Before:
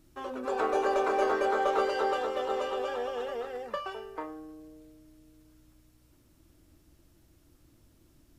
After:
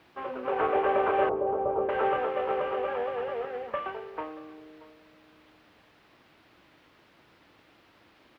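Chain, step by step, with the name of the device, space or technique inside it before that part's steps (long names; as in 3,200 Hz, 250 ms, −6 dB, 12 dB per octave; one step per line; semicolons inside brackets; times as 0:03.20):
army field radio (band-pass filter 360–3,300 Hz; variable-slope delta modulation 16 kbit/s; white noise bed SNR 21 dB)
high-pass filter 49 Hz
0:01.29–0:01.89: Bessel low-pass filter 620 Hz, order 8
high-frequency loss of the air 370 metres
single-tap delay 631 ms −22 dB
level +5 dB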